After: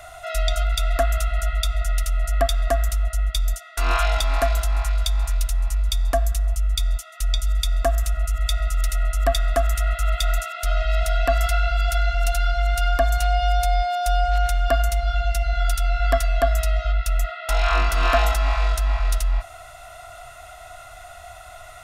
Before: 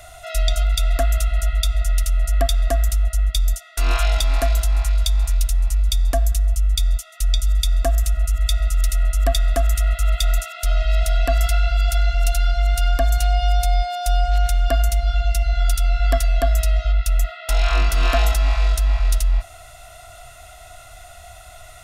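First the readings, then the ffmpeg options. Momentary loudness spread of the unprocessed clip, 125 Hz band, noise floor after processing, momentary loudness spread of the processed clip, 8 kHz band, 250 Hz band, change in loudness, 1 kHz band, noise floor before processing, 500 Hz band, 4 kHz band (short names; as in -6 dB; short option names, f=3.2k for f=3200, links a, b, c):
3 LU, -3.5 dB, -42 dBFS, 9 LU, -3.0 dB, -2.5 dB, -2.0 dB, +3.0 dB, -42 dBFS, +2.0 dB, -1.5 dB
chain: -af "equalizer=f=1.1k:t=o:w=2:g=8.5,volume=-3.5dB"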